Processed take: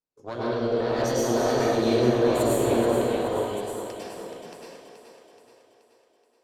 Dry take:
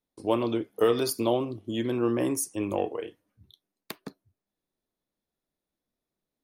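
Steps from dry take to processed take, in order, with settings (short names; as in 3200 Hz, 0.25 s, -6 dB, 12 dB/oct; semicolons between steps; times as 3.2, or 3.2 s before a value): reverse delay 0.602 s, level -1.5 dB; Doppler pass-by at 2.04, 5 m/s, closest 4 m; LPF 7300 Hz 24 dB/oct; limiter -21.5 dBFS, peak gain reduction 8.5 dB; flange 0.33 Hz, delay 6.2 ms, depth 6.7 ms, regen -63%; tube stage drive 28 dB, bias 0.65; formant shift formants +4 st; split-band echo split 310 Hz, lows 0.218 s, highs 0.427 s, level -8 dB; plate-style reverb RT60 1.2 s, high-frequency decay 0.95×, pre-delay 90 ms, DRR -7 dB; gain +6.5 dB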